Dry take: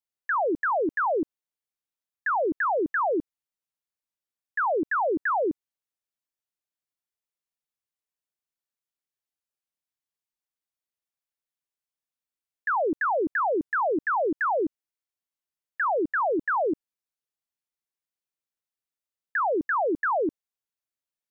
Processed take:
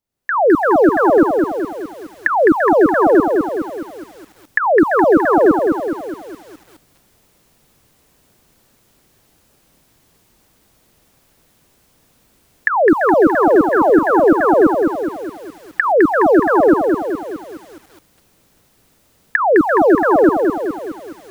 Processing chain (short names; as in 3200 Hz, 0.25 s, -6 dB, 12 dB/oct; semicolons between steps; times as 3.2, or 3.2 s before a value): recorder AGC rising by 36 dB/s; tilt shelf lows +8 dB, about 640 Hz; maximiser +12.5 dB; lo-fi delay 0.209 s, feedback 55%, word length 7-bit, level -4.5 dB; gain -1 dB